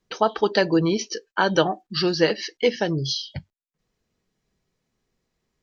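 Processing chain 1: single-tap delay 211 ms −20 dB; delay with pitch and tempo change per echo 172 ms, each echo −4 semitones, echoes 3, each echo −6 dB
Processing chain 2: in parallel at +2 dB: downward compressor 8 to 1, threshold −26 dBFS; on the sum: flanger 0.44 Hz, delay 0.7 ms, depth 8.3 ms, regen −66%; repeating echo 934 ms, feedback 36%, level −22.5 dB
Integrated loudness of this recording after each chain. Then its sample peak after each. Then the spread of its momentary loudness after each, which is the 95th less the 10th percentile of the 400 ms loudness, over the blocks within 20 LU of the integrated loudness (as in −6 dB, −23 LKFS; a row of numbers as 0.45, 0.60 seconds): −22.5, −24.0 LKFS; −2.5, −5.0 dBFS; 15, 6 LU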